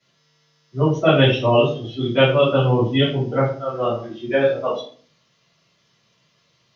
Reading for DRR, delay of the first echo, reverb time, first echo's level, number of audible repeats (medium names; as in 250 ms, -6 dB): -13.5 dB, no echo, 0.45 s, no echo, no echo